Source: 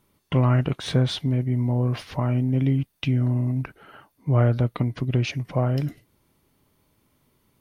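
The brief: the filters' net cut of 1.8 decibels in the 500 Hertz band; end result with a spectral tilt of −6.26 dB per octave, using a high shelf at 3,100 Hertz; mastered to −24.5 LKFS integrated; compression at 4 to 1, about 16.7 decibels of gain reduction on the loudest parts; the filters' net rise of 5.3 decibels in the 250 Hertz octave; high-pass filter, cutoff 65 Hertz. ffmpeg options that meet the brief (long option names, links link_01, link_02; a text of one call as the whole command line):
ffmpeg -i in.wav -af "highpass=65,equalizer=frequency=250:width_type=o:gain=7,equalizer=frequency=500:width_type=o:gain=-5,highshelf=frequency=3100:gain=5,acompressor=threshold=-34dB:ratio=4,volume=11.5dB" out.wav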